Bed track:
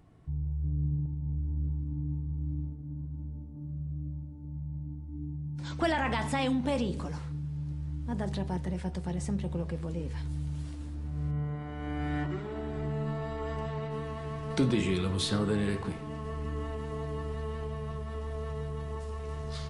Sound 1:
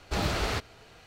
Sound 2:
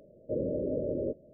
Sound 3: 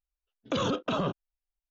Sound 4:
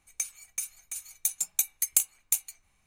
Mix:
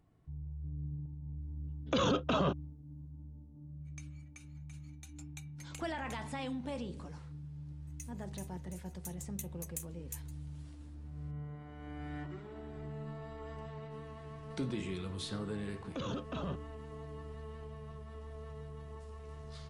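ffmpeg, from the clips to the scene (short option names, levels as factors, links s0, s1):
-filter_complex "[3:a]asplit=2[s0][s1];[4:a]asplit=2[s2][s3];[0:a]volume=0.299[s4];[s2]lowpass=3100[s5];[s3]aeval=exprs='val(0)*sin(2*PI*270*n/s)':c=same[s6];[s1]lowshelf=f=170:g=11[s7];[s0]atrim=end=1.7,asetpts=PTS-STARTPTS,volume=0.841,afade=t=in:d=0.004:c=hsin,afade=t=out:st=1.696:d=0.004:c=hsin,adelay=1410[s8];[s5]atrim=end=2.86,asetpts=PTS-STARTPTS,volume=0.299,afade=t=in:d=0.1,afade=t=out:st=2.76:d=0.1,adelay=3780[s9];[s6]atrim=end=2.86,asetpts=PTS-STARTPTS,volume=0.158,afade=t=in:d=0.004:c=hsin,afade=t=out:st=2.856:d=0.004:c=hsin,adelay=7800[s10];[s7]atrim=end=1.7,asetpts=PTS-STARTPTS,volume=0.224,afade=t=in:d=0.004:c=hsin,afade=t=out:st=1.696:d=0.004:c=hsin,adelay=15440[s11];[s4][s8][s9][s10][s11]amix=inputs=5:normalize=0"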